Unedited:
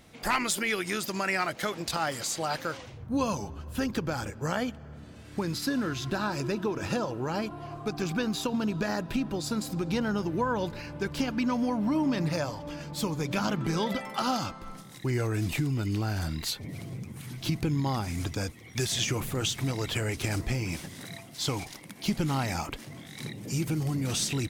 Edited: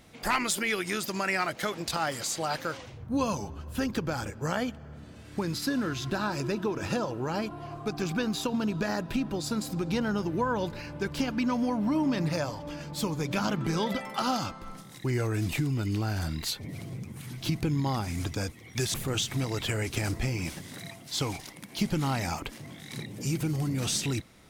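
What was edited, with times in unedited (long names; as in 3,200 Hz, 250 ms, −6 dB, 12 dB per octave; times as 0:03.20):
0:18.94–0:19.21: remove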